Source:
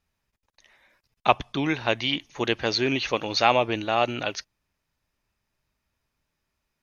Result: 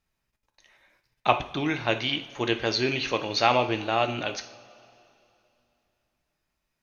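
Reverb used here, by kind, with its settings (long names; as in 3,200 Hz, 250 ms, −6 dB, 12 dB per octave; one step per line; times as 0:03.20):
coupled-rooms reverb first 0.5 s, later 2.9 s, from −18 dB, DRR 6.5 dB
level −2 dB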